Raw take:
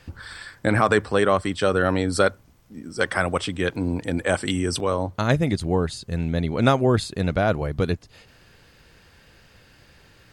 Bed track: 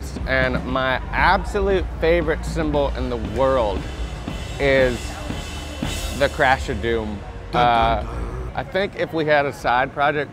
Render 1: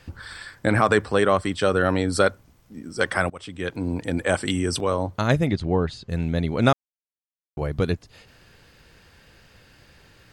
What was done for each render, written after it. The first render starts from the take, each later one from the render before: 3.30–4.27 s: fade in equal-power, from -22.5 dB; 5.47–6.09 s: low-pass 4.2 kHz; 6.73–7.57 s: mute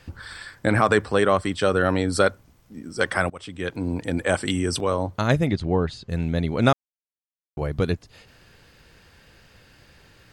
no audible change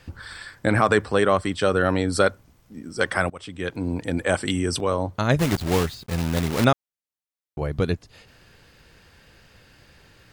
5.39–6.65 s: block-companded coder 3-bit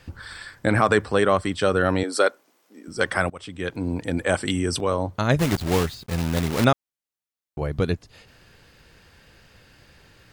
2.03–2.88 s: high-pass 310 Hz 24 dB/octave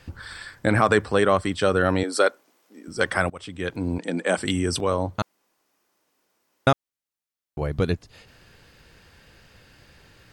3.98–4.38 s: Chebyshev band-pass 180–9100 Hz, order 4; 5.22–6.67 s: room tone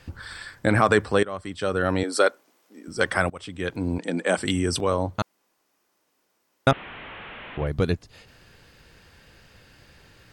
1.23–2.12 s: fade in, from -18.5 dB; 6.71–7.67 s: one-bit delta coder 16 kbps, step -33 dBFS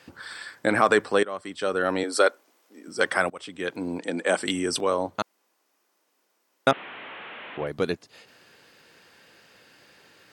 high-pass 260 Hz 12 dB/octave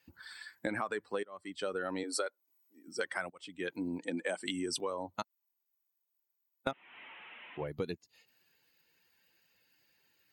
expander on every frequency bin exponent 1.5; compression 12:1, threshold -32 dBFS, peak gain reduction 17.5 dB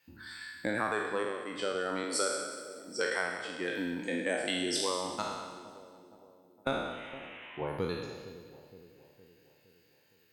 spectral sustain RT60 1.20 s; two-band feedback delay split 810 Hz, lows 464 ms, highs 188 ms, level -14 dB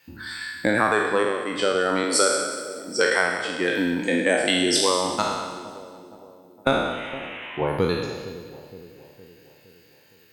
trim +11.5 dB; peak limiter -3 dBFS, peak gain reduction 1 dB

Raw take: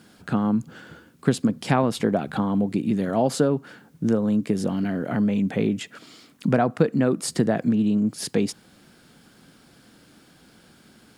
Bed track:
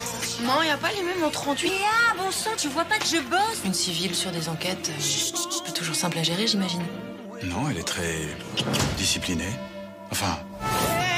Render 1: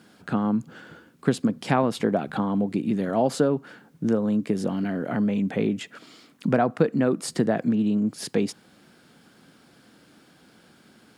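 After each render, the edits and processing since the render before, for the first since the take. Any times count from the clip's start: high-pass 150 Hz 6 dB/octave; treble shelf 4.1 kHz -5 dB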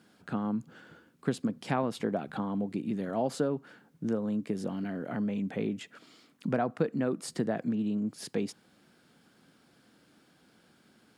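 trim -8 dB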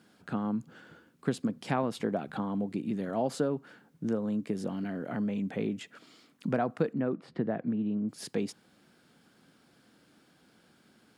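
6.93–8.09 s: distance through air 390 m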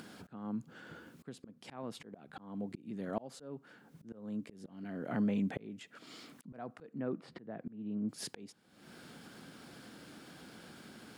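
upward compressor, threshold -42 dBFS; slow attack 553 ms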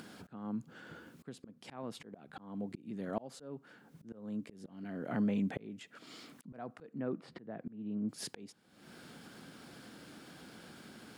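no audible change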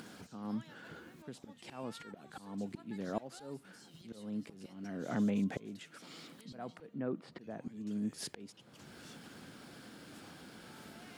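add bed track -35 dB

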